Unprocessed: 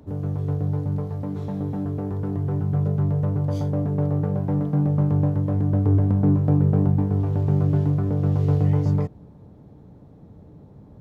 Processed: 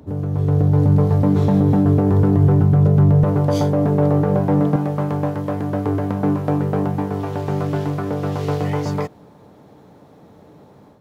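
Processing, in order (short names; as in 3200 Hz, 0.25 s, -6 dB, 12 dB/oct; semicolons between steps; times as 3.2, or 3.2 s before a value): HPF 58 Hz 6 dB/oct, from 3.24 s 370 Hz, from 4.76 s 1100 Hz; limiter -21.5 dBFS, peak gain reduction 7.5 dB; AGC gain up to 9.5 dB; gain +5 dB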